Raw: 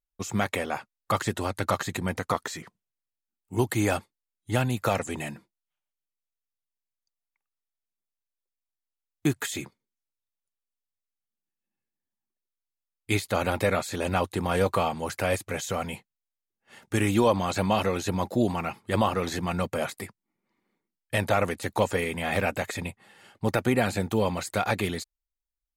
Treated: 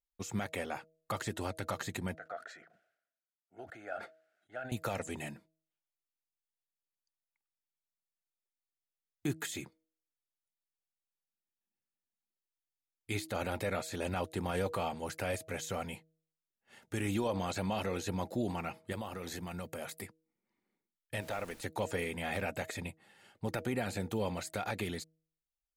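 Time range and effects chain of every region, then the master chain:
2.15–4.72 double band-pass 990 Hz, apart 1.1 oct + sustainer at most 78 dB/s
18.92–20.02 high shelf 11000 Hz +11.5 dB + compressor 3:1, threshold -31 dBFS
21.2–21.6 low shelf 190 Hz -7 dB + compressor 1.5:1, threshold -35 dBFS + added noise pink -49 dBFS
whole clip: bell 1100 Hz -4.5 dB 0.28 oct; de-hum 159.6 Hz, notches 4; limiter -16 dBFS; gain -7.5 dB

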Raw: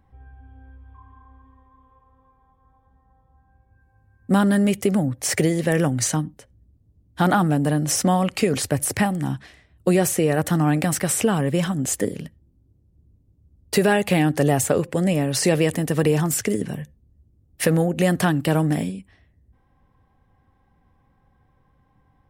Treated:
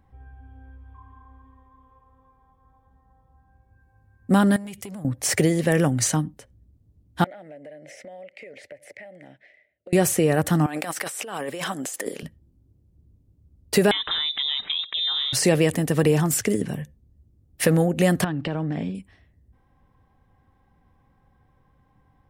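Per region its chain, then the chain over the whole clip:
4.56–5.05 bell 410 Hz -8.5 dB 2.9 oct + compressor 4:1, threshold -33 dBFS + core saturation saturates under 900 Hz
7.24–9.93 double band-pass 1100 Hz, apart 1.8 oct + compressor 4:1, threshold -40 dBFS
10.66–12.23 HPF 460 Hz + negative-ratio compressor -31 dBFS
13.91–15.33 compressor 3:1, threshold -24 dBFS + inverted band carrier 3800 Hz
18.24–18.95 Bessel low-pass 3400 Hz, order 4 + compressor, threshold -23 dBFS
whole clip: dry

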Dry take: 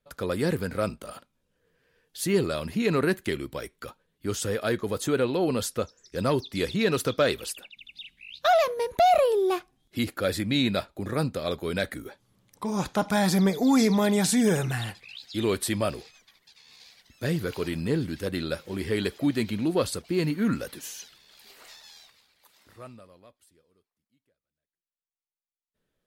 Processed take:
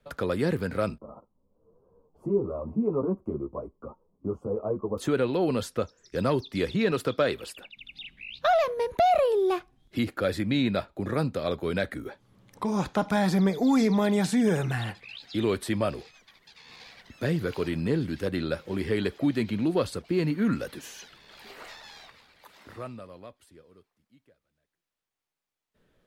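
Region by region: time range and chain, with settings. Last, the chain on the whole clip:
0.98–4.98 elliptic low-pass 1100 Hz + ensemble effect
6.91–7.57 low shelf 78 Hz -10 dB + notch 6100 Hz, Q 11
whole clip: high shelf 4800 Hz -11 dB; three-band squash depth 40%

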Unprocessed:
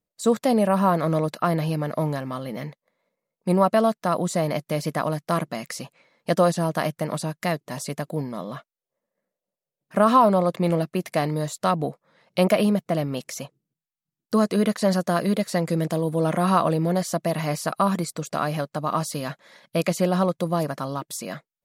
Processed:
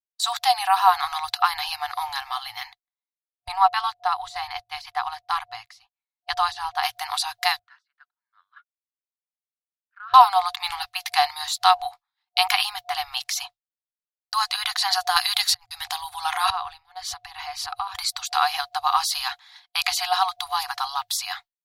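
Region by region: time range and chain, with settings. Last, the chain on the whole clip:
3.48–6.83 LPF 2900 Hz 6 dB/oct + low shelf 310 Hz +8 dB + upward expander, over -36 dBFS
7.59–10.14 compressor 3:1, threshold -28 dBFS + double band-pass 760 Hz, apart 1.9 oct + air absorption 62 m
15.16–15.81 auto swell 0.412 s + gate -39 dBFS, range -51 dB + high shelf 2700 Hz +7 dB
16.5–17.95 LPF 3800 Hz 6 dB/oct + low shelf 200 Hz +10.5 dB + compressor, threshold -27 dBFS
whole clip: FFT band-reject 110–720 Hz; expander -44 dBFS; graphic EQ 125/250/500/1000/2000/4000/8000 Hz -10/-9/+12/-4/-3/+10/-6 dB; gain +7.5 dB

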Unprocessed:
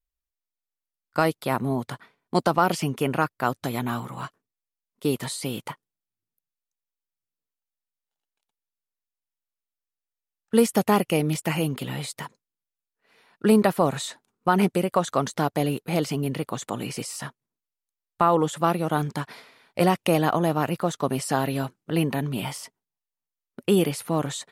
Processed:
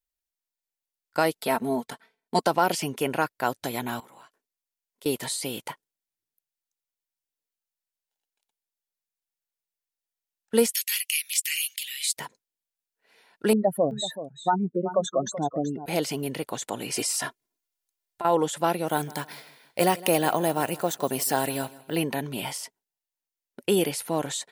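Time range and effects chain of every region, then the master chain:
1.35–2.43 notch 1100 Hz, Q 23 + comb 4.5 ms, depth 67% + transient shaper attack 0 dB, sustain -8 dB
4–5.06 bell 110 Hz -13.5 dB 1.7 oct + compressor, threshold -47 dBFS
10.72–12.17 steep high-pass 2000 Hz + high shelf 2600 Hz +8 dB
13.53–15.86 spectral contrast raised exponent 2.9 + echo 0.38 s -12.5 dB
16.92–18.25 comb 2.9 ms, depth 56% + negative-ratio compressor -26 dBFS
18.87–21.96 high shelf 11000 Hz +9 dB + careless resampling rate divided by 2×, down none, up hold + feedback echo 0.16 s, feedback 39%, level -20 dB
whole clip: tone controls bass -9 dB, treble +3 dB; notch 1200 Hz, Q 5.1

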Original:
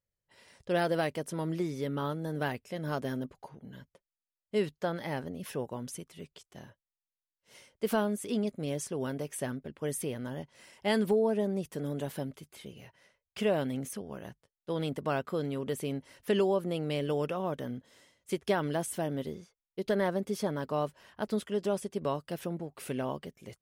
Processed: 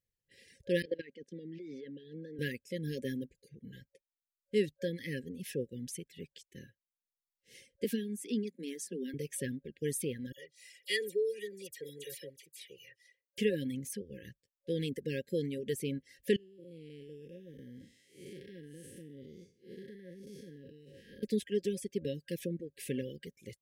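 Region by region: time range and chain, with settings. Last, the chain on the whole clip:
0.82–2.39 HPF 180 Hz 24 dB/oct + level quantiser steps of 14 dB + air absorption 210 m
7.84–9.14 rippled Chebyshev high-pass 170 Hz, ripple 3 dB + bell 530 Hz -11.5 dB 0.24 oct
10.32–13.38 HPF 1100 Hz 6 dB/oct + comb 2.1 ms, depth 95% + dispersion lows, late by 53 ms, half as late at 2900 Hz
16.36–21.23 time blur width 0.246 s + compressor 8:1, threshold -42 dBFS
whole clip: FFT band-reject 550–1600 Hz; reverb removal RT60 0.96 s

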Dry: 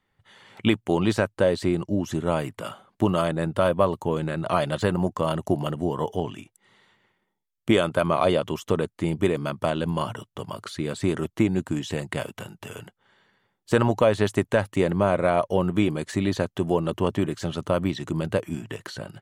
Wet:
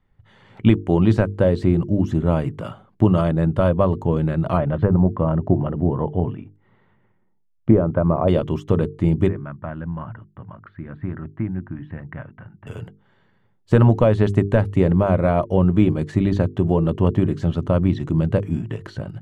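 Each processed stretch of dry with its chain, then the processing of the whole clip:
4.57–8.28 treble ducked by the level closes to 990 Hz, closed at -17 dBFS + LPF 2000 Hz
9.28–12.67 ladder low-pass 2000 Hz, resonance 50% + bell 430 Hz -9 dB 0.59 oct
whole clip: RIAA curve playback; notches 50/100/150/200/250/300/350/400/450 Hz

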